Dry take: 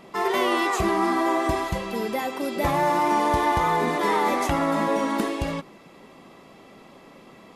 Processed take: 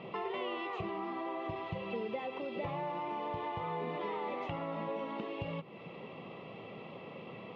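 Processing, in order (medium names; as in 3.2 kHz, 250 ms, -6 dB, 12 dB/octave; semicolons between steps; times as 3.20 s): compression 5:1, threshold -38 dBFS, peak gain reduction 18 dB; cabinet simulation 100–3300 Hz, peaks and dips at 110 Hz +10 dB, 160 Hz +5 dB, 280 Hz -5 dB, 480 Hz +6 dB, 1.6 kHz -10 dB, 2.8 kHz +7 dB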